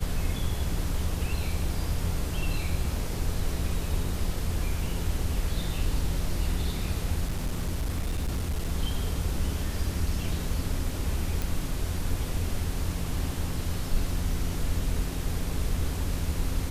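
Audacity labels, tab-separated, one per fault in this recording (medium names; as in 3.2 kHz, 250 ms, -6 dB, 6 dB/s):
7.280000	8.720000	clipped -24.5 dBFS
11.420000	11.420000	pop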